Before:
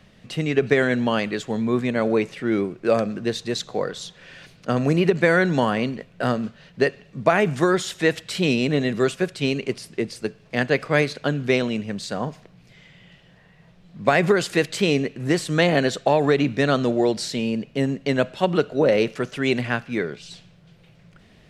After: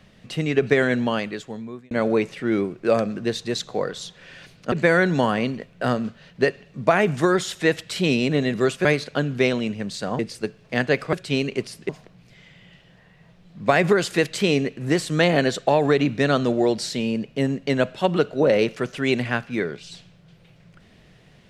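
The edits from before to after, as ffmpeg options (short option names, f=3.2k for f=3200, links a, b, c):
-filter_complex "[0:a]asplit=7[a][b][c][d][e][f][g];[a]atrim=end=1.91,asetpts=PTS-STARTPTS,afade=t=out:st=0.95:d=0.96[h];[b]atrim=start=1.91:end=4.722,asetpts=PTS-STARTPTS,afade=t=in:d=0.004:c=hsin[i];[c]atrim=start=5.108:end=9.242[j];[d]atrim=start=10.938:end=12.282[k];[e]atrim=start=9.998:end=10.942[l];[f]atrim=start=9.238:end=10.002[m];[g]atrim=start=12.278[n];[h][i]concat=n=2:v=0:a=1[o];[o][j]acrossfade=d=0.004:c1=hsin:c2=hsin[p];[p][k]acrossfade=d=0.004:c1=hsin:c2=hsin[q];[q][l]acrossfade=d=0.004:c1=hsin:c2=hsin[r];[r][m]acrossfade=d=0.004:c1=hsin:c2=hsin[s];[s][n]acrossfade=d=0.004:c1=hsin:c2=hsin"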